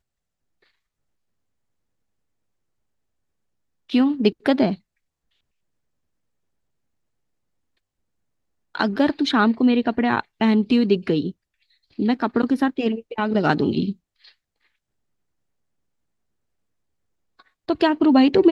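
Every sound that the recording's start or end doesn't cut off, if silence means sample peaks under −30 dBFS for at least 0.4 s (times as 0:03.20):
0:03.90–0:04.75
0:08.75–0:11.31
0:11.99–0:13.92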